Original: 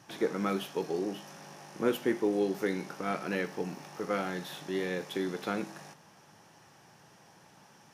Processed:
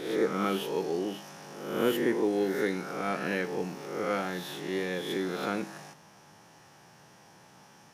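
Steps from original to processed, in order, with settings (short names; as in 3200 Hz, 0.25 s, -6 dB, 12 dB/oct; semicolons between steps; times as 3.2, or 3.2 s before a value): spectral swells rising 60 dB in 0.88 s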